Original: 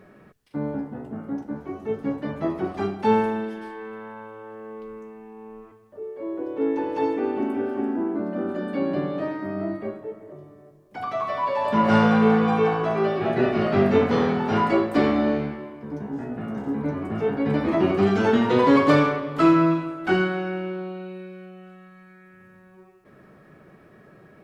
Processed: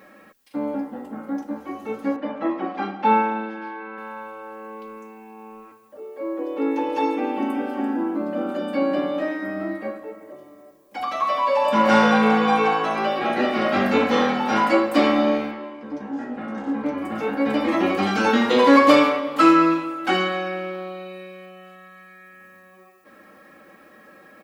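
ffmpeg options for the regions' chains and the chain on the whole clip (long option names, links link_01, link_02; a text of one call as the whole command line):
ffmpeg -i in.wav -filter_complex "[0:a]asettb=1/sr,asplit=3[link_01][link_02][link_03];[link_01]atrim=end=2.164[link_04];[link_02]atrim=start=2.16:end=3.98,asetpts=PTS-STARTPTS,afade=type=in:duration=0.004:curve=qsin,afade=type=out:start_time=1.816:duration=0.004:curve=qsin,highpass=170,lowpass=2500,asplit=2[link_05][link_06];[link_06]adelay=15,volume=-11.5dB[link_07];[link_05][link_07]amix=inputs=2:normalize=0,atrim=end_sample=80262[link_08];[link_03]atrim=start=3.976[link_09];[link_04][link_08]acrossfade=duration=0.004:curve1=hsin:curve2=qsin[link_10];[link_10][link_09]acrossfade=duration=0.004:curve1=qsin:curve2=hsin,asettb=1/sr,asplit=3[link_11][link_12][link_13];[link_11]atrim=end=15.514[link_14];[link_12]atrim=start=15.51:end=16.98,asetpts=PTS-STARTPTS,afade=type=in:duration=0.004:curve=qsin,afade=type=out:start_time=1.466:duration=0.004:curve=qsin,lowpass=5400,asoftclip=type=hard:threshold=-18.5dB[link_15];[link_13]atrim=start=16.976[link_16];[link_14][link_15]acrossfade=duration=0.004:curve1=hsin:curve2=qsin[link_17];[link_17][link_16]acrossfade=duration=0.004:curve1=qsin:curve2=hsin,lowpass=frequency=2900:poles=1,aemphasis=mode=production:type=riaa,aecho=1:1:3.7:0.8,volume=3.5dB" out.wav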